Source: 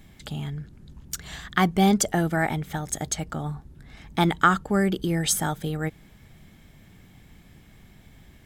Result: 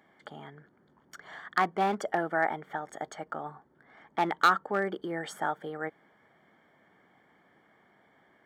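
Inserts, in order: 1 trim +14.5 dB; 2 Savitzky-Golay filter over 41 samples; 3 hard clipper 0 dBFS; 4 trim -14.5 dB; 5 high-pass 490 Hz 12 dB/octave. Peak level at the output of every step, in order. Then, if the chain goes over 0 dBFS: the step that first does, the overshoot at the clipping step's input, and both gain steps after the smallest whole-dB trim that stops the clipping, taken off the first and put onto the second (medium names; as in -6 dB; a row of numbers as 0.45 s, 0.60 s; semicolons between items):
+9.5 dBFS, +8.0 dBFS, 0.0 dBFS, -14.5 dBFS, -10.0 dBFS; step 1, 8.0 dB; step 1 +6.5 dB, step 4 -6.5 dB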